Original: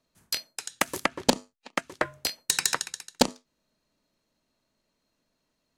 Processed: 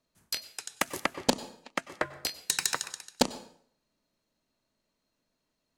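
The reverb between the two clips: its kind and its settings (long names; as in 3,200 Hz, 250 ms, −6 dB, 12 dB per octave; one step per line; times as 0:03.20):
dense smooth reverb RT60 0.58 s, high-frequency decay 0.85×, pre-delay 85 ms, DRR 16 dB
level −3.5 dB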